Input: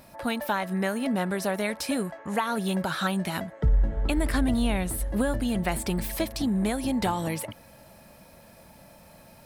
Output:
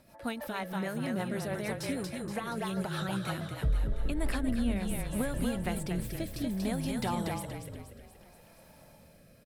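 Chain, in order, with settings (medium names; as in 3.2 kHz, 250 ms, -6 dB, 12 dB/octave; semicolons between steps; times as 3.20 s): frequency-shifting echo 237 ms, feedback 50%, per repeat -32 Hz, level -4 dB; rotary cabinet horn 6.3 Hz, later 0.6 Hz, at 3.63 s; trim -6 dB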